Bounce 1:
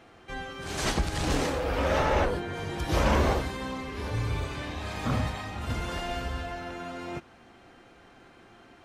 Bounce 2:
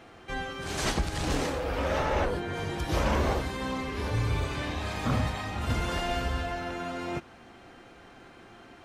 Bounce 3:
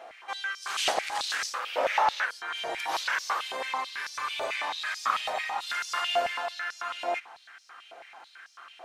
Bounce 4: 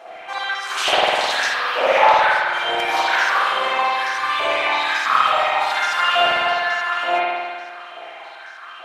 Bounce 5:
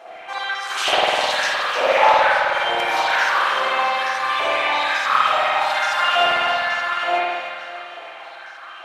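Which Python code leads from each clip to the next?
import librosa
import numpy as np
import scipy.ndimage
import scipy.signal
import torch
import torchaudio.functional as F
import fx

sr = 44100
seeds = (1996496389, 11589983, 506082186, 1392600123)

y1 = fx.rider(x, sr, range_db=3, speed_s=0.5)
y2 = fx.filter_held_highpass(y1, sr, hz=9.1, low_hz=650.0, high_hz=5300.0)
y3 = fx.rev_spring(y2, sr, rt60_s=1.7, pass_ms=(51,), chirp_ms=25, drr_db=-8.0)
y3 = F.gain(torch.from_numpy(y3), 4.0).numpy()
y4 = fx.echo_feedback(y3, sr, ms=305, feedback_pct=56, wet_db=-9.5)
y4 = F.gain(torch.from_numpy(y4), -1.0).numpy()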